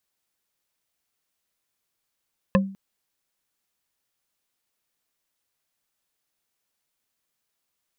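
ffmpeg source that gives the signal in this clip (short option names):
-f lavfi -i "aevalsrc='0.211*pow(10,-3*t/0.43)*sin(2*PI*194*t)+0.168*pow(10,-3*t/0.127)*sin(2*PI*534.9*t)+0.133*pow(10,-3*t/0.057)*sin(2*PI*1048.4*t)+0.106*pow(10,-3*t/0.031)*sin(2*PI*1733*t)+0.0841*pow(10,-3*t/0.019)*sin(2*PI*2588*t)':d=0.2:s=44100"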